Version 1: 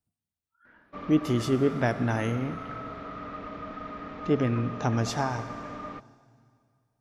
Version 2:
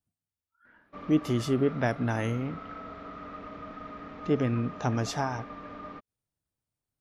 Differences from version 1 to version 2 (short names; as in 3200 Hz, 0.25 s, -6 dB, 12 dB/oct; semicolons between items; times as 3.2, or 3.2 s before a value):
background -3.0 dB; reverb: off